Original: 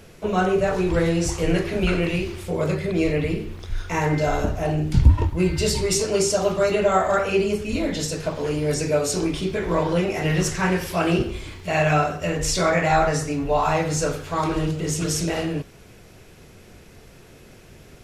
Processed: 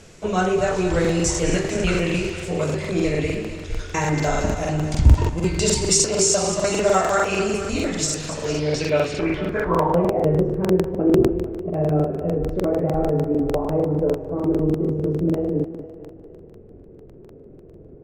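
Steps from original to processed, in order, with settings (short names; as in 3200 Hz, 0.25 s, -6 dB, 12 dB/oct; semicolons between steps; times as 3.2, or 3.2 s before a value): thinning echo 0.23 s, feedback 60%, high-pass 250 Hz, level -9.5 dB; low-pass sweep 7500 Hz -> 410 Hz, 8.35–10.5; crackling interface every 0.15 s, samples 2048, repeat, from 1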